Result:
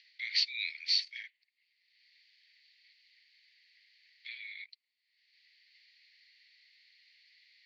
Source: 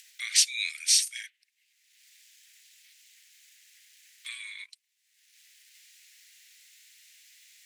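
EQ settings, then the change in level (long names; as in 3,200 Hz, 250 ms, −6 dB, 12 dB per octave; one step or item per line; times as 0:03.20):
four-pole ladder high-pass 1,800 Hz, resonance 65%
low-pass with resonance 4,500 Hz, resonance Q 12
high-frequency loss of the air 230 metres
−1.5 dB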